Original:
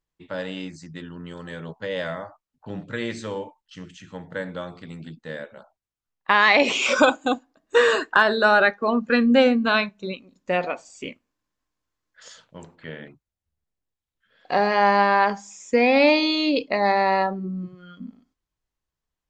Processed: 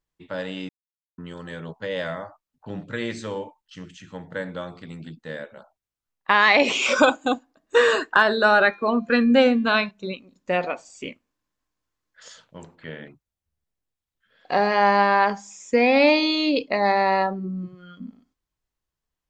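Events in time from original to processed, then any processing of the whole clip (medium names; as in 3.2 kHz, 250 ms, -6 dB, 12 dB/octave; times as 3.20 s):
0.69–1.18 s: mute
8.38–9.91 s: de-hum 345 Hz, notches 32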